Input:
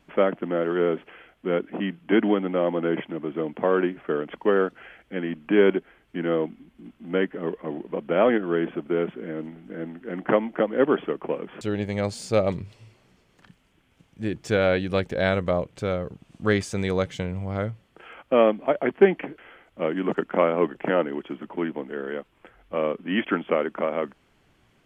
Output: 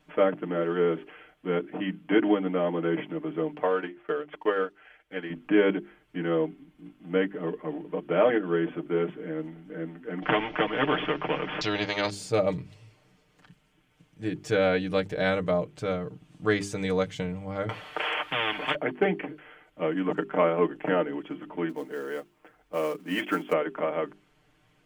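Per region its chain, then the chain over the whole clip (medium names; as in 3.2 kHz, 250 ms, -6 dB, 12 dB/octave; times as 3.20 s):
3.55–5.30 s: peaking EQ 180 Hz -10.5 dB 2.1 oct + transient shaper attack +3 dB, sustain -7 dB
10.22–12.10 s: steep low-pass 5.7 kHz 48 dB/octave + spectrum-flattening compressor 2:1
17.69–18.75 s: three-band isolator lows -20 dB, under 510 Hz, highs -12 dB, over 4.3 kHz + spectrum-flattening compressor 10:1
21.69–23.53 s: companded quantiser 6-bit + bass shelf 120 Hz -9 dB + tape noise reduction on one side only decoder only
whole clip: hum notches 50/100/150/200/250/300/350/400 Hz; comb 6.6 ms, depth 75%; trim -4 dB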